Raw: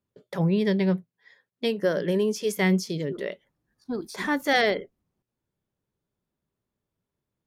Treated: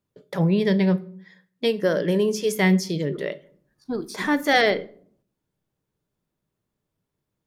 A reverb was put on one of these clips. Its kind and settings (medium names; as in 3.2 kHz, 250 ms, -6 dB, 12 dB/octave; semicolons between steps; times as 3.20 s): simulated room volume 630 m³, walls furnished, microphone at 0.52 m; trim +3 dB